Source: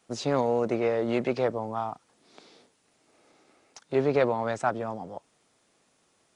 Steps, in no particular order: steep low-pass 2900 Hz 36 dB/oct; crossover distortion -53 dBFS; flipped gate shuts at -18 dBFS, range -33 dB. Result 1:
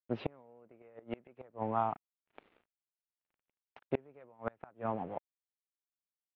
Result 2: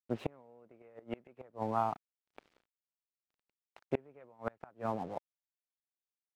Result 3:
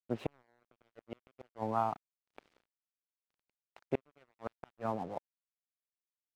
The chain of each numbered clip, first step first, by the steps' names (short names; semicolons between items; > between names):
crossover distortion > steep low-pass > flipped gate; steep low-pass > crossover distortion > flipped gate; steep low-pass > flipped gate > crossover distortion